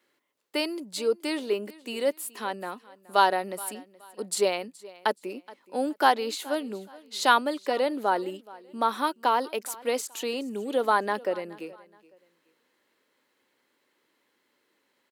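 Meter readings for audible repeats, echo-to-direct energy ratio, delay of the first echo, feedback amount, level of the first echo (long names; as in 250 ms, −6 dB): 2, −20.5 dB, 423 ms, 31%, −21.0 dB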